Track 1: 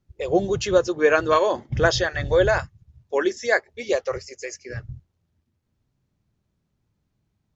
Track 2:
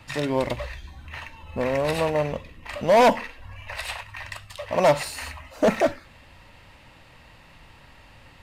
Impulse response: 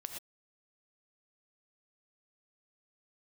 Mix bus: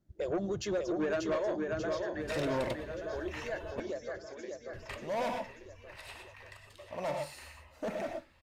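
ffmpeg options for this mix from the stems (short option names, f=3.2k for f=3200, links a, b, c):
-filter_complex "[0:a]acompressor=threshold=-29dB:ratio=3,equalizer=f=200:t=o:w=0.33:g=9,equalizer=f=315:t=o:w=0.33:g=11,equalizer=f=630:t=o:w=0.33:g=10,equalizer=f=1.6k:t=o:w=0.33:g=4,equalizer=f=2.5k:t=o:w=0.33:g=-5,volume=-6.5dB,afade=t=out:st=1.32:d=0.48:silence=0.421697,afade=t=out:st=4.2:d=0.34:silence=0.446684,asplit=4[a][b][c][d];[b]volume=-19dB[e];[c]volume=-4.5dB[f];[1:a]adelay=2200,volume=-8dB,asplit=3[g][h][i];[g]atrim=end=3.8,asetpts=PTS-STARTPTS,afade=t=out:st=3.796:d=0.004:c=hsin[j];[h]atrim=start=3.8:end=4.73,asetpts=PTS-STARTPTS,volume=0[k];[i]atrim=start=4.73,asetpts=PTS-STARTPTS,afade=t=in:d=0.004:c=hsin[l];[j][k][l]concat=n=3:v=0:a=1,asplit=2[m][n];[n]volume=-6dB[o];[d]apad=whole_len=468403[p];[m][p]sidechaingate=range=-33dB:threshold=-55dB:ratio=16:detection=peak[q];[2:a]atrim=start_sample=2205[r];[e][o]amix=inputs=2:normalize=0[s];[s][r]afir=irnorm=-1:irlink=0[t];[f]aecho=0:1:588|1176|1764|2352|2940|3528|4116|4704:1|0.56|0.314|0.176|0.0983|0.0551|0.0308|0.0173[u];[a][q][t][u]amix=inputs=4:normalize=0,asoftclip=type=tanh:threshold=-26.5dB"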